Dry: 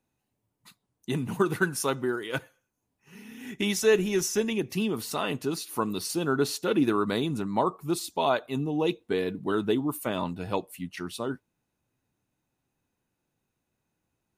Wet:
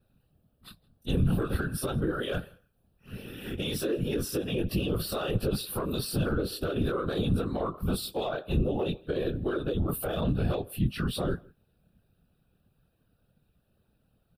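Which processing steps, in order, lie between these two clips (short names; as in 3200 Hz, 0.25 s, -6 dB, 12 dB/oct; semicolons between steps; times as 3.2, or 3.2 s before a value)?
short-time reversal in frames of 47 ms; fixed phaser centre 1400 Hz, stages 8; comb 7.2 ms, depth 47%; compressor 12:1, threshold -35 dBFS, peak gain reduction 15 dB; soft clip -28 dBFS, distortion -24 dB; whisperiser; limiter -35 dBFS, peak gain reduction 11 dB; low shelf 420 Hz +12 dB; outdoor echo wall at 28 m, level -26 dB; gain +8.5 dB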